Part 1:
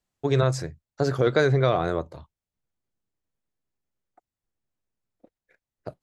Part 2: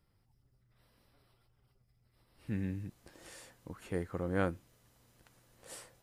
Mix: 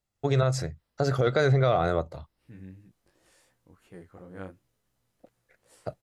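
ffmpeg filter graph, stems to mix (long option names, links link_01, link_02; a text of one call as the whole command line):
ffmpeg -i stem1.wav -i stem2.wav -filter_complex "[0:a]aecho=1:1:1.5:0.35,volume=-4.5dB[link_01];[1:a]flanger=delay=15.5:depth=6:speed=2.8,volume=-12.5dB[link_02];[link_01][link_02]amix=inputs=2:normalize=0,dynaudnorm=framelen=120:gausssize=3:maxgain=5dB,alimiter=limit=-13dB:level=0:latency=1:release=109" out.wav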